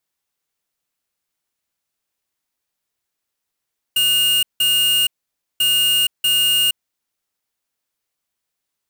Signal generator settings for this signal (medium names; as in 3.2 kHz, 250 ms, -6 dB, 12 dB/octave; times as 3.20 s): beep pattern square 2.84 kHz, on 0.47 s, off 0.17 s, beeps 2, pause 0.53 s, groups 2, -16 dBFS